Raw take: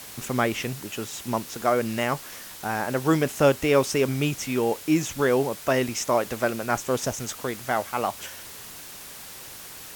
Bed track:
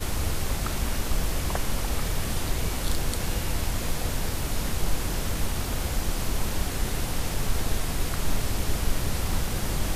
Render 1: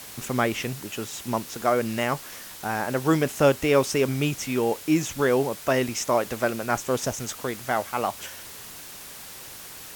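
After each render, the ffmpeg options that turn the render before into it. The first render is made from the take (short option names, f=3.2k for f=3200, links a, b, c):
-af anull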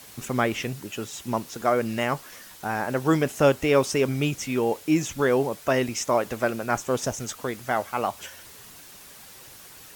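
-af "afftdn=nr=6:nf=-42"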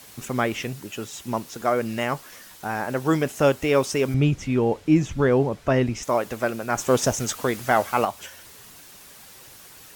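-filter_complex "[0:a]asettb=1/sr,asplit=3[a][b][c];[a]atrim=end=4.144[d];[b]atrim=start=4.14:end=6.03,asetpts=PTS-STARTPTS,afade=t=in:d=0.004:c=qsin,afade=t=out:st=1.886:d=0.004:c=qsin,aemphasis=mode=reproduction:type=bsi[e];[c]atrim=start=6.026[f];[d][e]acrossfade=d=0.004:c1=hsin:c2=qsin[g];[g][f]acrossfade=d=0.004:c1=qsin:c2=hsin,asettb=1/sr,asplit=3[h][i][j];[h]atrim=end=6.784[k];[i]atrim=start=6.78:end=8.05,asetpts=PTS-STARTPTS,afade=t=in:d=0.004:c=qsin,afade=t=out:st=1.266:d=0.004:c=qsin,acontrast=54[l];[j]atrim=start=8.046[m];[k][l]acrossfade=d=0.004:c1=hsin:c2=qsin[n];[n][m]acrossfade=d=0.004:c1=qsin:c2=hsin"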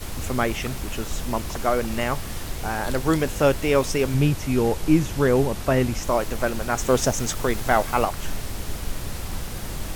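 -filter_complex "[1:a]volume=-4dB[a];[0:a][a]amix=inputs=2:normalize=0"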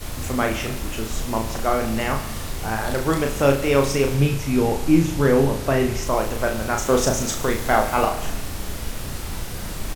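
-filter_complex "[0:a]asplit=2[a][b];[b]adelay=36,volume=-4dB[c];[a][c]amix=inputs=2:normalize=0,asplit=2[d][e];[e]aecho=0:1:72|144|216|288|360|432|504:0.251|0.148|0.0874|0.0516|0.0304|0.018|0.0106[f];[d][f]amix=inputs=2:normalize=0"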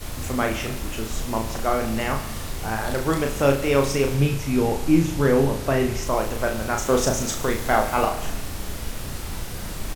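-af "volume=-1.5dB"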